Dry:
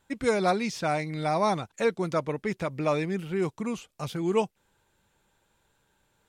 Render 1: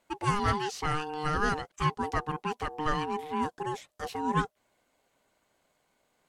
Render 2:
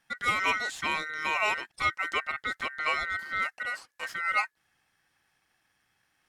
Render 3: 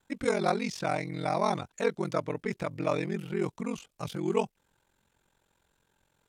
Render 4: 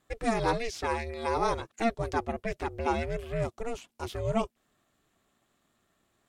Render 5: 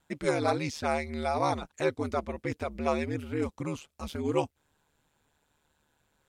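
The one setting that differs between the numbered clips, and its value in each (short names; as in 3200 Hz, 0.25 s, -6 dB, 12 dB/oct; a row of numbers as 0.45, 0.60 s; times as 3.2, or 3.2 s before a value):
ring modulator, frequency: 610, 1700, 22, 230, 75 Hz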